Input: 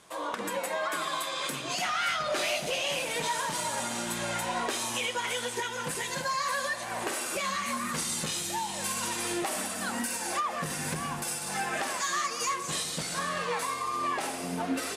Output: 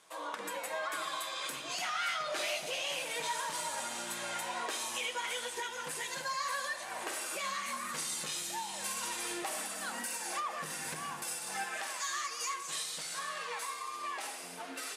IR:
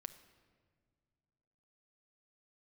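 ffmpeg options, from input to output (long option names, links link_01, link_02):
-filter_complex "[0:a]asetnsamples=nb_out_samples=441:pad=0,asendcmd='11.64 highpass f 1200',highpass=frequency=550:poles=1[link_01];[1:a]atrim=start_sample=2205,atrim=end_sample=6174[link_02];[link_01][link_02]afir=irnorm=-1:irlink=0"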